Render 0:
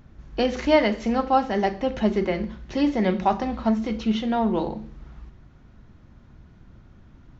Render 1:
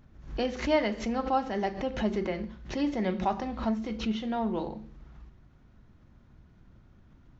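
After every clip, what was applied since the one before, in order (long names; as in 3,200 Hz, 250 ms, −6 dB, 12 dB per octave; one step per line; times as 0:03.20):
background raised ahead of every attack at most 120 dB per second
level −7.5 dB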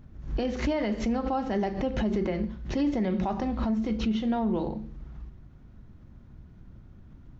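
low-shelf EQ 430 Hz +8 dB
brickwall limiter −19.5 dBFS, peak gain reduction 9.5 dB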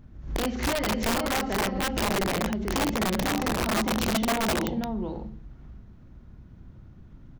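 multi-tap delay 47/87/490 ms −8.5/−14/−4.5 dB
wrap-around overflow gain 20 dB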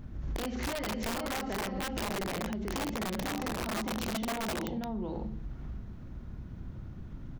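in parallel at +2.5 dB: brickwall limiter −27 dBFS, peak gain reduction 7 dB
on the sum: downward compressor 6 to 1, threshold −30 dBFS, peak gain reduction 11 dB
level −2.5 dB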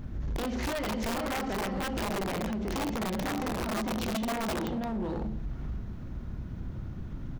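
hard clipping −34 dBFS, distortion −13 dB
level +5 dB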